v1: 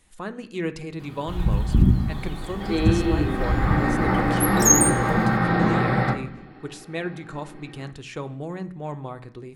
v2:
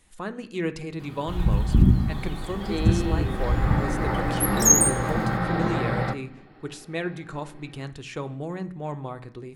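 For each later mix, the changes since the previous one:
second sound: send −11.0 dB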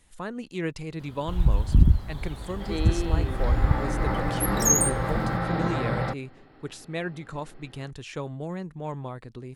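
reverb: off

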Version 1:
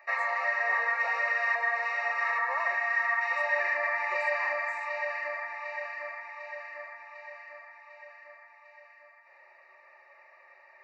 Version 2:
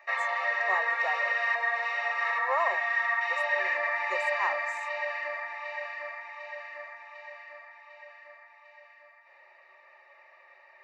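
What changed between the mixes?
speech +9.5 dB
background: remove Butterworth band-reject 3,300 Hz, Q 2.7

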